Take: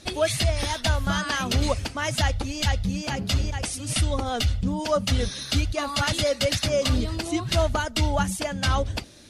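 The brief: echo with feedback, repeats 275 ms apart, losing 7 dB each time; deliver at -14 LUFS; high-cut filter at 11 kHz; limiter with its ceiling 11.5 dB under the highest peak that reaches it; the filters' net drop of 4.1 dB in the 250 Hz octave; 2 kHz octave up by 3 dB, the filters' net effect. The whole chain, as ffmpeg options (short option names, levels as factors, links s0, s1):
-af "lowpass=11000,equalizer=f=250:t=o:g=-5.5,equalizer=f=2000:t=o:g=4,alimiter=limit=0.0841:level=0:latency=1,aecho=1:1:275|550|825|1100|1375:0.447|0.201|0.0905|0.0407|0.0183,volume=5.96"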